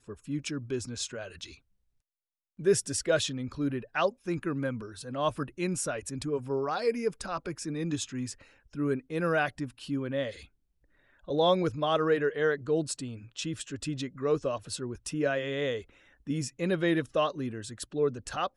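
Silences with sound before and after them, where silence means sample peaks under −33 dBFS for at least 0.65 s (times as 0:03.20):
0:01.44–0:02.61
0:10.30–0:11.29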